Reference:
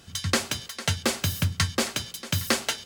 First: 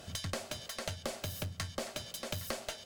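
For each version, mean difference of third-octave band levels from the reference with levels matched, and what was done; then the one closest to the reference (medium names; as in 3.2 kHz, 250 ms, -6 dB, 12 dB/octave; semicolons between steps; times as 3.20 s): 4.5 dB: peaking EQ 620 Hz +14 dB 0.47 oct; compression 4:1, threshold -36 dBFS, peak gain reduction 16.5 dB; one-sided clip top -37 dBFS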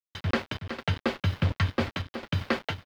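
9.5 dB: bit crusher 5-bit; distance through air 350 m; on a send: delay 371 ms -9.5 dB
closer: first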